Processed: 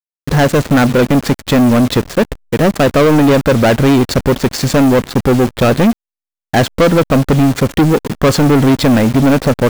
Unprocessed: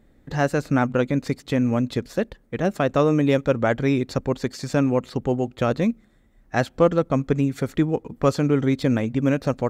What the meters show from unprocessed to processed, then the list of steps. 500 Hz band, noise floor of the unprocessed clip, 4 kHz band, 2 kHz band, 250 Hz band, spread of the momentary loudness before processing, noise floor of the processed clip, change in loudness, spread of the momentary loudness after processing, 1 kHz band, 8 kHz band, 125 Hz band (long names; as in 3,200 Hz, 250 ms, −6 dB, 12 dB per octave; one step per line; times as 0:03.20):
+10.0 dB, −57 dBFS, +16.5 dB, +11.5 dB, +11.0 dB, 6 LU, below −85 dBFS, +11.0 dB, 5 LU, +11.0 dB, +17.0 dB, +11.0 dB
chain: hold until the input has moved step −37 dBFS
leveller curve on the samples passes 5